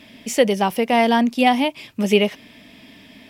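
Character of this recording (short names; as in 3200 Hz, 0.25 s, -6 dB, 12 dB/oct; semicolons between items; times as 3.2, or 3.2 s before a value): noise floor -48 dBFS; spectral tilt -3.0 dB/oct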